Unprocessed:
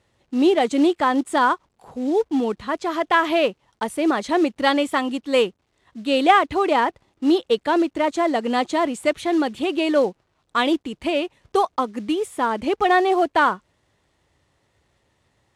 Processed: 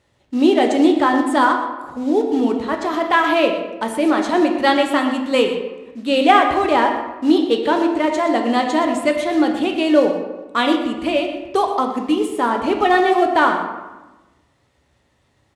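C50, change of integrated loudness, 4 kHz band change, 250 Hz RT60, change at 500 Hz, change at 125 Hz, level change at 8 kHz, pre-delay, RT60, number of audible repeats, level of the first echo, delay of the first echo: 5.5 dB, +3.5 dB, +3.0 dB, 1.4 s, +3.5 dB, n/a, +2.0 dB, 3 ms, 1.1 s, 1, -12.5 dB, 0.122 s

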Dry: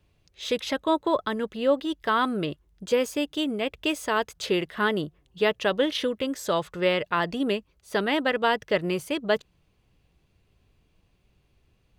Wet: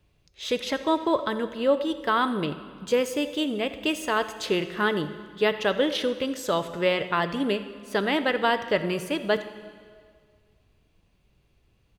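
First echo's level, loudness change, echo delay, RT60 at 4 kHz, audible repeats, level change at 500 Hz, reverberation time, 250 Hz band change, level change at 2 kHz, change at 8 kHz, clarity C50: -18.5 dB, +0.5 dB, 86 ms, 1.7 s, 1, +0.5 dB, 2.0 s, +0.5 dB, +0.5 dB, +0.5 dB, 11.5 dB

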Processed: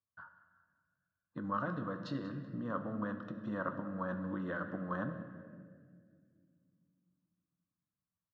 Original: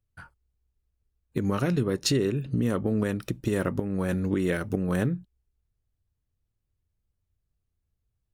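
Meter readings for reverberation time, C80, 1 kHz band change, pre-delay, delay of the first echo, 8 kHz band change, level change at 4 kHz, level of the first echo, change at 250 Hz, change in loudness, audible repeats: 2.0 s, 9.5 dB, -2.0 dB, 11 ms, 0.189 s, under -35 dB, -22.0 dB, -18.0 dB, -12.0 dB, -12.0 dB, 2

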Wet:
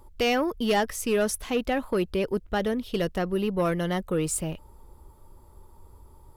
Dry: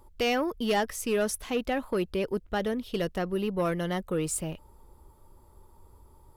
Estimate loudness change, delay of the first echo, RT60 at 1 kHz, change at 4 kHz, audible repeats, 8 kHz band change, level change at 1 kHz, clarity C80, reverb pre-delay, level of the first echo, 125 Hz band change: +2.5 dB, none, none, +2.5 dB, none, +2.5 dB, +2.5 dB, none, none, none, +3.5 dB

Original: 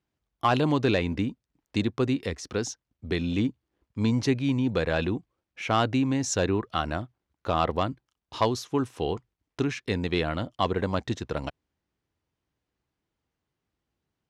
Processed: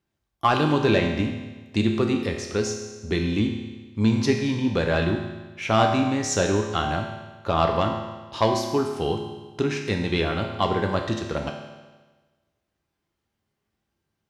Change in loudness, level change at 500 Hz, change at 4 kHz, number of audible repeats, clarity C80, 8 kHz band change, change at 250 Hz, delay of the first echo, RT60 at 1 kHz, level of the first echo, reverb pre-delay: +3.5 dB, +4.5 dB, +4.0 dB, none, 6.5 dB, +3.5 dB, +3.0 dB, none, 1.3 s, none, 4 ms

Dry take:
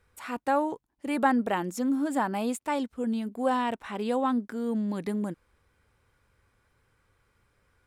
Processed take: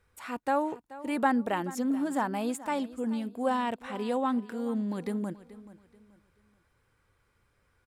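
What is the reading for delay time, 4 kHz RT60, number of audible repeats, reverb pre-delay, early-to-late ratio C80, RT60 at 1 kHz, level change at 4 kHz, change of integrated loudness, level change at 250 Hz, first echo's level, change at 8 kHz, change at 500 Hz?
0.431 s, none, 2, none, none, none, -2.0 dB, -2.0 dB, -2.0 dB, -17.0 dB, -2.0 dB, -2.0 dB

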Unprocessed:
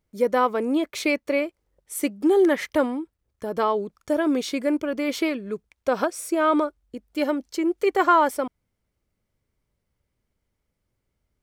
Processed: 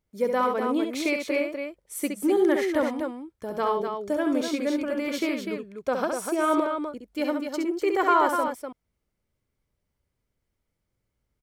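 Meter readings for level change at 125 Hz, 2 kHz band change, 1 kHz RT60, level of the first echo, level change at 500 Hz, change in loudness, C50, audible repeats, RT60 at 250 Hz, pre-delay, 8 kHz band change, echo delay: n/a, -2.0 dB, none, -5.5 dB, -2.5 dB, -2.5 dB, none, 2, none, none, -2.0 dB, 67 ms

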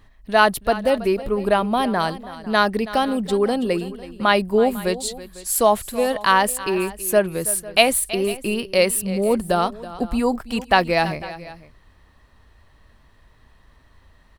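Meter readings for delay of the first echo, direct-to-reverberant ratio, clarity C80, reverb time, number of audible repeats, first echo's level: 0.326 s, none, none, none, 2, -16.0 dB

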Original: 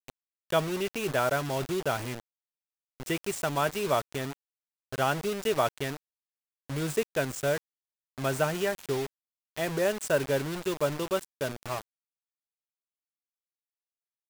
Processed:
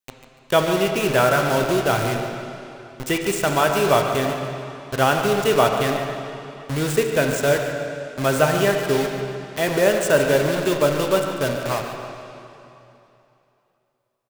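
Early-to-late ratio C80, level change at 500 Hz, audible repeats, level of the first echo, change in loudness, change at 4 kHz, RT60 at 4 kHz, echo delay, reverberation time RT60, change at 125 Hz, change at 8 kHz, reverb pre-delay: 4.0 dB, +10.5 dB, 2, -11.0 dB, +10.0 dB, +10.0 dB, 2.7 s, 0.145 s, 2.9 s, +9.5 dB, +9.0 dB, 6 ms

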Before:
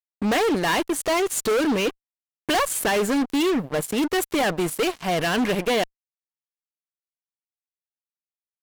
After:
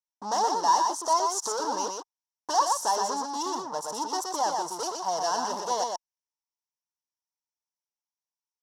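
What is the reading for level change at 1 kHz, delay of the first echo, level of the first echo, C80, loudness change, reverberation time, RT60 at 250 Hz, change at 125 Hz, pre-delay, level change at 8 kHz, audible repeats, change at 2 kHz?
+2.5 dB, 0.121 s, -4.0 dB, none, -4.5 dB, none, none, under -20 dB, none, -1.0 dB, 1, -16.0 dB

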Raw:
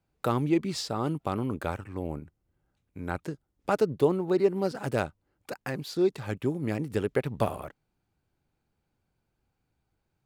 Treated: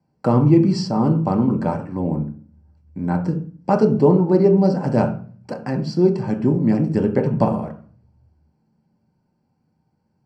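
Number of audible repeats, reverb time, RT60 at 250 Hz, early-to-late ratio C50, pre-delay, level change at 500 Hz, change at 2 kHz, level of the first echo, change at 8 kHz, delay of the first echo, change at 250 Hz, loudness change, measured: none, 0.40 s, 0.70 s, 10.5 dB, 3 ms, +8.5 dB, +1.0 dB, none, n/a, none, +13.5 dB, +11.0 dB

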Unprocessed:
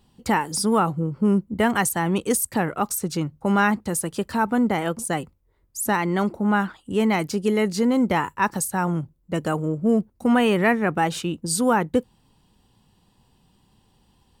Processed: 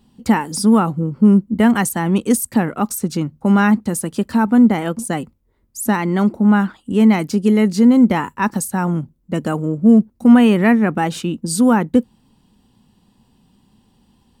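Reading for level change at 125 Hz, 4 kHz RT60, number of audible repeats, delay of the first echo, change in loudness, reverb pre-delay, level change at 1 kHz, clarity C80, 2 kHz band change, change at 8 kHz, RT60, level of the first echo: +6.5 dB, none, none, none, +7.0 dB, none, +1.5 dB, none, +1.5 dB, +1.5 dB, none, none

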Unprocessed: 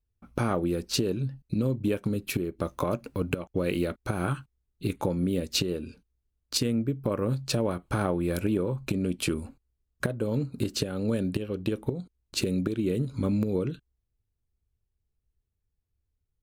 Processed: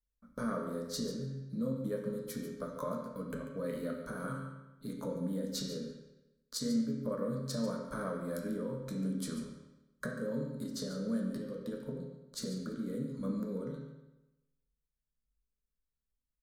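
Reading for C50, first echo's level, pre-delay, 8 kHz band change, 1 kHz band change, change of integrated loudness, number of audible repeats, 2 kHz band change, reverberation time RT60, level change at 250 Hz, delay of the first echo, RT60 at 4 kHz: 3.5 dB, -11.0 dB, 8 ms, -9.0 dB, -9.0 dB, -8.5 dB, 1, -10.5 dB, 1.0 s, -7.5 dB, 0.142 s, 0.85 s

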